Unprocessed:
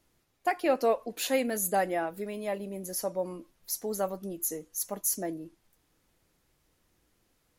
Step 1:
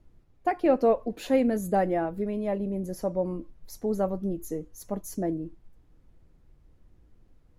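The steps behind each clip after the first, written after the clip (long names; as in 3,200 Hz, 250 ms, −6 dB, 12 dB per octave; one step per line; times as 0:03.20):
spectral tilt −4 dB per octave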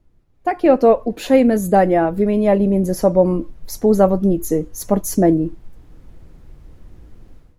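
automatic gain control gain up to 16.5 dB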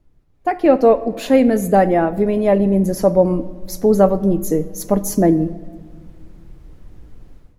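rectangular room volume 2,000 cubic metres, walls mixed, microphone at 0.37 metres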